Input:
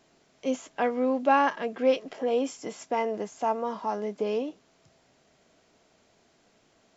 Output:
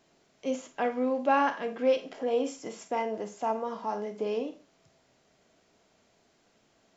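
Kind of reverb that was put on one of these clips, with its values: Schroeder reverb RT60 0.32 s, combs from 32 ms, DRR 9 dB; gain -3 dB

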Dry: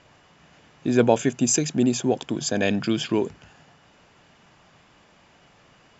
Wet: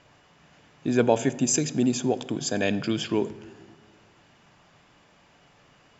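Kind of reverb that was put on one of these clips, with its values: shoebox room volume 1500 m³, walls mixed, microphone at 0.33 m; gain -2.5 dB

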